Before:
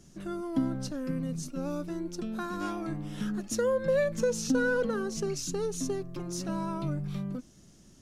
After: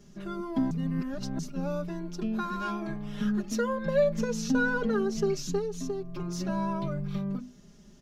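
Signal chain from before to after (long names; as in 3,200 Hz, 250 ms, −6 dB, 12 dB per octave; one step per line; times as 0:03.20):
parametric band 9,300 Hz −13 dB 0.91 octaves
mains-hum notches 50/100/150/200/250/300/350 Hz
comb filter 4.9 ms, depth 93%
0:00.71–0:01.39: reverse
0:05.58–0:06.20: downward compressor 2.5 to 1, threshold −32 dBFS, peak gain reduction 6.5 dB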